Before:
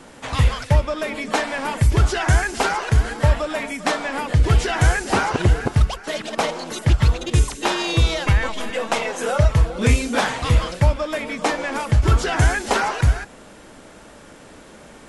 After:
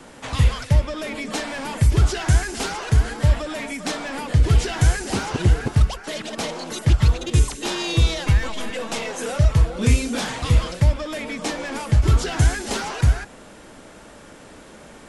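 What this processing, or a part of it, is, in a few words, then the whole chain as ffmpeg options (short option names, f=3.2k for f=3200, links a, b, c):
one-band saturation: -filter_complex "[0:a]acrossover=split=360|3100[a][b][c];[b]asoftclip=type=tanh:threshold=-29dB[d];[a][d][c]amix=inputs=3:normalize=0"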